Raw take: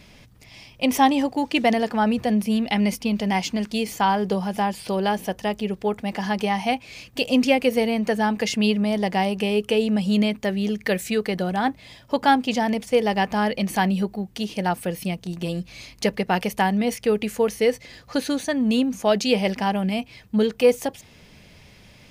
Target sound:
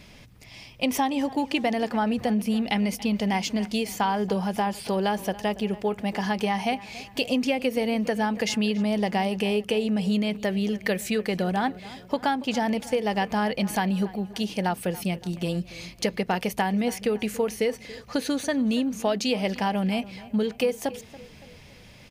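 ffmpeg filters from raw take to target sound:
-filter_complex "[0:a]acompressor=threshold=0.0891:ratio=6,asplit=2[s0][s1];[s1]adelay=282,lowpass=f=4000:p=1,volume=0.126,asplit=2[s2][s3];[s3]adelay=282,lowpass=f=4000:p=1,volume=0.49,asplit=2[s4][s5];[s5]adelay=282,lowpass=f=4000:p=1,volume=0.49,asplit=2[s6][s7];[s7]adelay=282,lowpass=f=4000:p=1,volume=0.49[s8];[s0][s2][s4][s6][s8]amix=inputs=5:normalize=0"

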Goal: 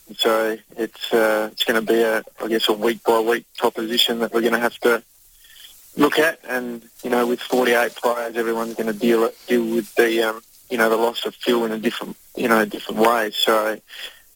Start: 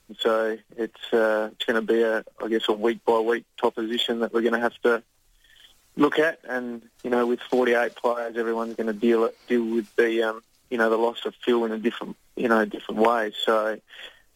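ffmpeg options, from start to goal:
-filter_complex "[0:a]asplit=3[s0][s1][s2];[s1]asetrate=33038,aresample=44100,atempo=1.33484,volume=0.141[s3];[s2]asetrate=66075,aresample=44100,atempo=0.66742,volume=0.2[s4];[s0][s3][s4]amix=inputs=3:normalize=0,aemphasis=mode=production:type=75kf,volume=1.41"

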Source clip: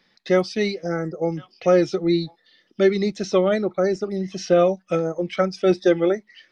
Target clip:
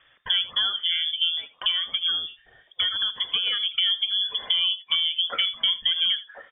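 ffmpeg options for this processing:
-filter_complex "[0:a]asettb=1/sr,asplit=3[s0][s1][s2];[s0]atrim=end=1.714[s3];[s1]atrim=start=1.71:end=3.69,asetpts=PTS-STARTPTS,afade=t=in:d=0.004:c=qsin,afade=t=out:st=1.976:d=0.004:c=qsin,acrossover=split=420|1000[s4][s5][s6];[s4]acompressor=threshold=0.0282:ratio=4[s7];[s5]acompressor=threshold=0.0251:ratio=4[s8];[s6]acompressor=threshold=0.02:ratio=4[s9];[s7][s8][s9]amix=inputs=3:normalize=0[s10];[s2]atrim=start=3.686[s11];[s3][s10]acrossfade=d=0.004:c1=hsin:c2=qsin[s12];[s12][s11]acrossfade=d=0.004:c1=qsin:c2=hsin,alimiter=limit=0.224:level=0:latency=1:release=39,acompressor=threshold=0.0398:ratio=3,aecho=1:1:81:0.141,lowpass=f=3100:t=q:w=0.5098,lowpass=f=3100:t=q:w=0.6013,lowpass=f=3100:t=q:w=0.9,lowpass=f=3100:t=q:w=2.563,afreqshift=-3600,volume=1.88"

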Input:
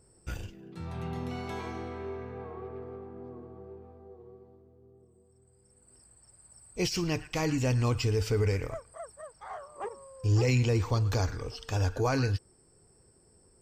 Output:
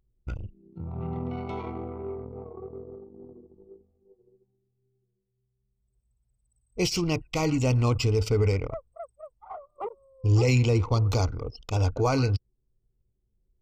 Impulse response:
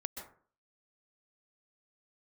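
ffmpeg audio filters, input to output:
-af "anlmdn=1.58,asuperstop=centerf=1700:order=4:qfactor=3.2,volume=1.58"

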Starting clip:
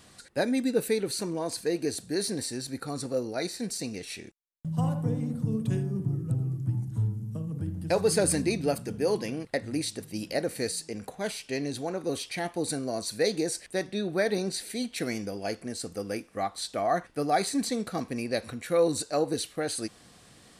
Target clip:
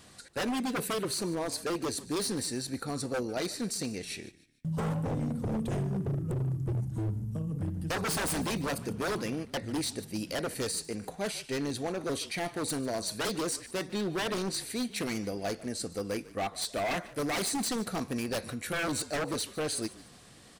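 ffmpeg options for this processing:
-filter_complex "[0:a]asettb=1/sr,asplit=3[s0][s1][s2];[s0]atrim=end=16.614[s3];[s1]atrim=start=16.61:end=18.73,asetpts=PTS-STARTPTS,afade=t=in:d=0.004:c=qsin,afade=t=out:st=2.116:d=0.004:c=qsin,highshelf=f=7500:g=6[s4];[s2]atrim=start=18.726[s5];[s3][s4]acrossfade=d=0.004:c1=hsin:c2=qsin[s6];[s6][s5]acrossfade=d=0.004:c1=qsin:c2=hsin,aeval=exprs='0.0501*(abs(mod(val(0)/0.0501+3,4)-2)-1)':c=same,asplit=4[s7][s8][s9][s10];[s8]adelay=148,afreqshift=-43,volume=0.119[s11];[s9]adelay=296,afreqshift=-86,volume=0.0427[s12];[s10]adelay=444,afreqshift=-129,volume=0.0155[s13];[s7][s11][s12][s13]amix=inputs=4:normalize=0"

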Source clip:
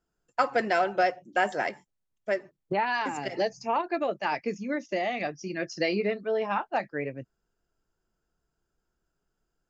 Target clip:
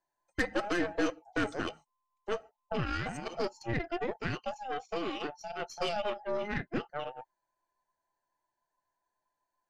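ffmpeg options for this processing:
-af "afftfilt=real='real(if(between(b,1,1008),(2*floor((b-1)/48)+1)*48-b,b),0)':imag='imag(if(between(b,1,1008),(2*floor((b-1)/48)+1)*48-b,b),0)*if(between(b,1,1008),-1,1)':win_size=2048:overlap=0.75,aeval=exprs='0.335*(cos(1*acos(clip(val(0)/0.335,-1,1)))-cos(1*PI/2))+0.0299*(cos(8*acos(clip(val(0)/0.335,-1,1)))-cos(8*PI/2))':c=same,volume=0.473"

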